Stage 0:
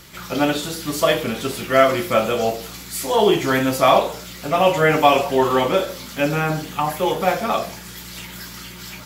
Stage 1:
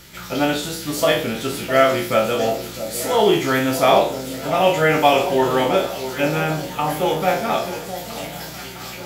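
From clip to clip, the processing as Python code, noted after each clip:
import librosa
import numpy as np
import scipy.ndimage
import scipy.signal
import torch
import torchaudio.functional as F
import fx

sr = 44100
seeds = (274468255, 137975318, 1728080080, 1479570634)

y = fx.spec_trails(x, sr, decay_s=0.39)
y = fx.notch(y, sr, hz=1100.0, q=8.1)
y = fx.echo_alternate(y, sr, ms=657, hz=910.0, feedback_pct=66, wet_db=-10.5)
y = F.gain(torch.from_numpy(y), -1.0).numpy()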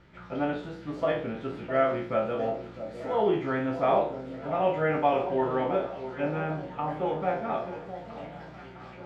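y = scipy.signal.sosfilt(scipy.signal.butter(2, 1600.0, 'lowpass', fs=sr, output='sos'), x)
y = F.gain(torch.from_numpy(y), -9.0).numpy()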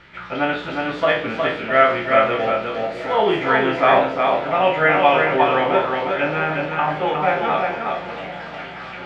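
y = fx.peak_eq(x, sr, hz=2400.0, db=14.5, octaves=2.9)
y = y + 10.0 ** (-4.0 / 20.0) * np.pad(y, (int(362 * sr / 1000.0), 0))[:len(y)]
y = F.gain(torch.from_numpy(y), 3.0).numpy()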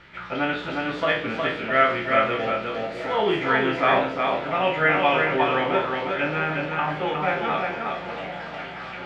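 y = fx.dynamic_eq(x, sr, hz=700.0, q=1.1, threshold_db=-27.0, ratio=4.0, max_db=-5)
y = F.gain(torch.from_numpy(y), -2.0).numpy()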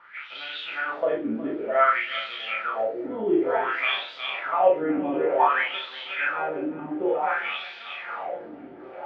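y = fx.wah_lfo(x, sr, hz=0.55, low_hz=260.0, high_hz=3900.0, q=4.5)
y = fx.doubler(y, sr, ms=36.0, db=-3.0)
y = F.gain(torch.from_numpy(y), 6.0).numpy()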